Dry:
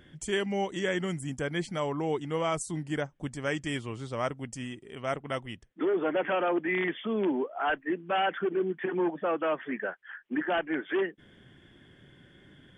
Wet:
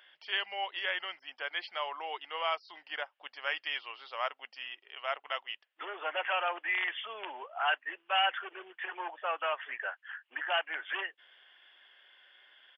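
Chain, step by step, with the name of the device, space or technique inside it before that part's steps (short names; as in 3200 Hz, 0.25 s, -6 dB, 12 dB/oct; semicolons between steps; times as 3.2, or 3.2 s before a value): musical greeting card (downsampling 11025 Hz; HPF 730 Hz 24 dB/oct; bell 2800 Hz +8.5 dB 0.26 oct)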